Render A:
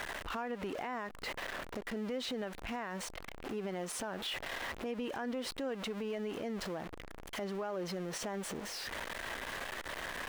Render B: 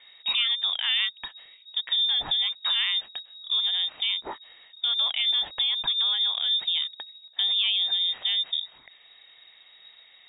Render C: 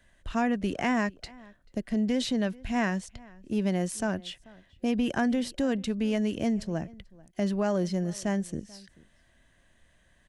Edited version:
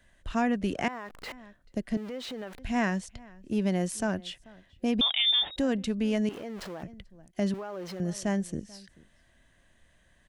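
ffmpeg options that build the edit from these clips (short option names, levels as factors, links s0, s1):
-filter_complex "[0:a]asplit=4[s0][s1][s2][s3];[2:a]asplit=6[s4][s5][s6][s7][s8][s9];[s4]atrim=end=0.882[s10];[s0]atrim=start=0.878:end=1.322[s11];[s5]atrim=start=1.318:end=1.972[s12];[s1]atrim=start=1.968:end=2.592[s13];[s6]atrim=start=2.588:end=5.012[s14];[1:a]atrim=start=5.008:end=5.562[s15];[s7]atrim=start=5.558:end=6.292[s16];[s2]atrim=start=6.288:end=6.832[s17];[s8]atrim=start=6.828:end=7.542[s18];[s3]atrim=start=7.538:end=8.002[s19];[s9]atrim=start=7.998[s20];[s10][s11]acrossfade=d=0.004:c1=hsin:c2=hsin[s21];[s21][s12]acrossfade=d=0.004:c1=hsin:c2=hsin[s22];[s22][s13]acrossfade=d=0.004:c1=hsin:c2=hsin[s23];[s23][s14]acrossfade=d=0.004:c1=hsin:c2=hsin[s24];[s24][s15]acrossfade=d=0.004:c1=hsin:c2=hsin[s25];[s25][s16]acrossfade=d=0.004:c1=hsin:c2=hsin[s26];[s26][s17]acrossfade=d=0.004:c1=hsin:c2=hsin[s27];[s27][s18]acrossfade=d=0.004:c1=hsin:c2=hsin[s28];[s28][s19]acrossfade=d=0.004:c1=hsin:c2=hsin[s29];[s29][s20]acrossfade=d=0.004:c1=hsin:c2=hsin"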